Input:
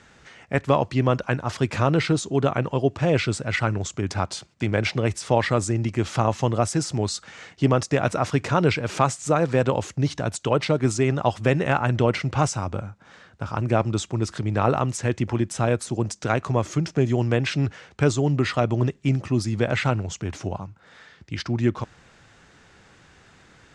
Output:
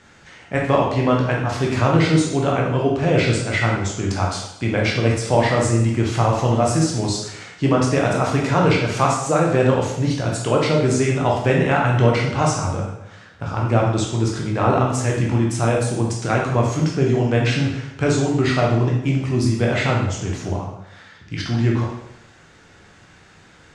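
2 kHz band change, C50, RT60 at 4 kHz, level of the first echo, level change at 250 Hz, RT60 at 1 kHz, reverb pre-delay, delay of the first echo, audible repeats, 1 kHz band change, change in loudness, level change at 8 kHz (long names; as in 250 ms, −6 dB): +4.5 dB, 3.0 dB, 0.75 s, no echo audible, +4.5 dB, 0.80 s, 7 ms, no echo audible, no echo audible, +4.5 dB, +4.5 dB, +4.0 dB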